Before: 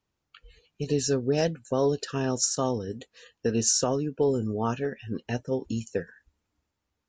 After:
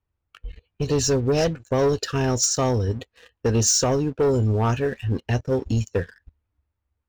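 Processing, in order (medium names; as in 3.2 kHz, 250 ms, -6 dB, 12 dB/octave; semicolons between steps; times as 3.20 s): level-controlled noise filter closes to 2.5 kHz, open at -21.5 dBFS; resonant low shelf 120 Hz +10 dB, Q 1.5; waveshaping leveller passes 2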